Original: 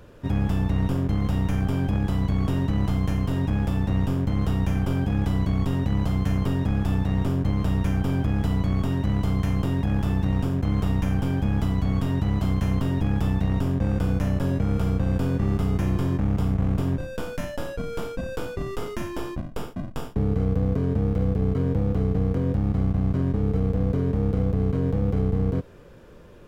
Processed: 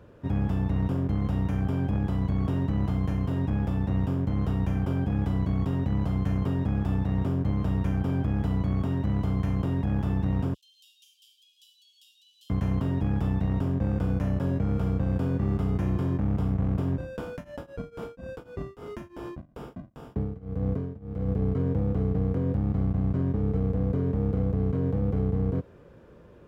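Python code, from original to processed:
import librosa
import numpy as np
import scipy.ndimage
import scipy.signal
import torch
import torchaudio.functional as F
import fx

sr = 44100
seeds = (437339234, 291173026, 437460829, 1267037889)

y = fx.steep_highpass(x, sr, hz=2900.0, slope=96, at=(10.54, 12.5))
y = fx.tremolo_shape(y, sr, shape='triangle', hz=fx.line((17.37, 4.8), (21.28, 1.4)), depth_pct=95, at=(17.37, 21.28), fade=0.02)
y = scipy.signal.sosfilt(scipy.signal.butter(2, 51.0, 'highpass', fs=sr, output='sos'), y)
y = fx.high_shelf(y, sr, hz=2600.0, db=-10.5)
y = F.gain(torch.from_numpy(y), -2.5).numpy()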